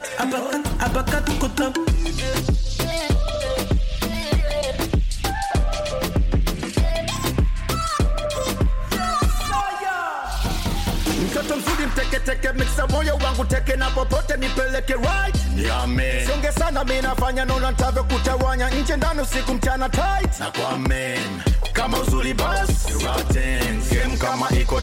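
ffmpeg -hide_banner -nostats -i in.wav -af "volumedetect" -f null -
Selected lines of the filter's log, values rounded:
mean_volume: -20.5 dB
max_volume: -9.4 dB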